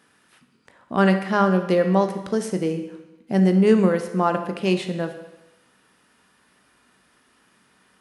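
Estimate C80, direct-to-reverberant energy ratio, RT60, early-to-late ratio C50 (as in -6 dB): 11.5 dB, 7.0 dB, 1.0 s, 9.0 dB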